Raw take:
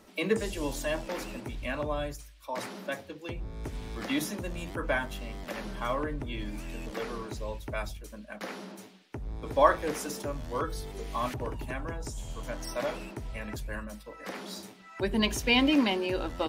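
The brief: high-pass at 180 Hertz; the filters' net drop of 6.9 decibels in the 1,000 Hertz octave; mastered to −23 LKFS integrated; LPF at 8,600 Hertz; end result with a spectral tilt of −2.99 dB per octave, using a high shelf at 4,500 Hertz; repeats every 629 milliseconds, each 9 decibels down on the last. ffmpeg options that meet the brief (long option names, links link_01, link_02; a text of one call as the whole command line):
ffmpeg -i in.wav -af "highpass=180,lowpass=8600,equalizer=frequency=1000:width_type=o:gain=-8,highshelf=frequency=4500:gain=-6.5,aecho=1:1:629|1258|1887|2516:0.355|0.124|0.0435|0.0152,volume=12dB" out.wav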